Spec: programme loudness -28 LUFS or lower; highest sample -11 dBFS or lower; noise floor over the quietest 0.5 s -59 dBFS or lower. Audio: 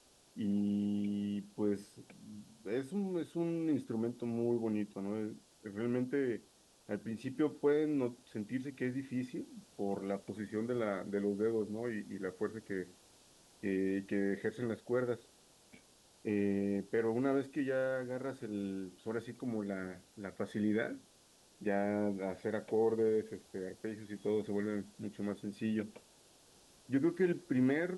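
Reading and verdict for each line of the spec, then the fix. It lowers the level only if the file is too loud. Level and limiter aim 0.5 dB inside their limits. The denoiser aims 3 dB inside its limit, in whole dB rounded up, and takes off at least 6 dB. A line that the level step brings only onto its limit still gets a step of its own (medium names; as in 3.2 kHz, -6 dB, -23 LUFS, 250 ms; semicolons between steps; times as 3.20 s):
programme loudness -37.0 LUFS: pass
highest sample -20.5 dBFS: pass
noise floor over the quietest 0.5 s -65 dBFS: pass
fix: none needed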